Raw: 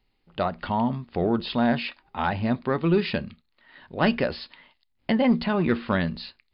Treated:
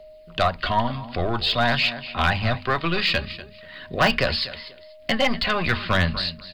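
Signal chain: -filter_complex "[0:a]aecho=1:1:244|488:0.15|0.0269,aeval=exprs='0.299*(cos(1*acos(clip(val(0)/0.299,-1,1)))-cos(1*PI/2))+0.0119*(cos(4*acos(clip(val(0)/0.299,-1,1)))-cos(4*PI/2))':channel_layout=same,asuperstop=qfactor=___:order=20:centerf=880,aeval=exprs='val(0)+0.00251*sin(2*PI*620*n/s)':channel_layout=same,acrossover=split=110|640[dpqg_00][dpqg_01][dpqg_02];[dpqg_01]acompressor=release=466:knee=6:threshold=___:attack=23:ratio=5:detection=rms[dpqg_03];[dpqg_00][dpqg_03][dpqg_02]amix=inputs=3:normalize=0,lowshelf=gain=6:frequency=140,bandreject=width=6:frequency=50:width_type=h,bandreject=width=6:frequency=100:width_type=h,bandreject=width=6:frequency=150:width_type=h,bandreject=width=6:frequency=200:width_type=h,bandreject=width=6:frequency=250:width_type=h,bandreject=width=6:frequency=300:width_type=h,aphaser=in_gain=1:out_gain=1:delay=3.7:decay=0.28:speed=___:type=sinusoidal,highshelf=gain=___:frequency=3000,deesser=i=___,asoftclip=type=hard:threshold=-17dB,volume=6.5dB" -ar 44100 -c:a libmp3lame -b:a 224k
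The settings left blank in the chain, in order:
7.5, -40dB, 0.49, 11, 0.65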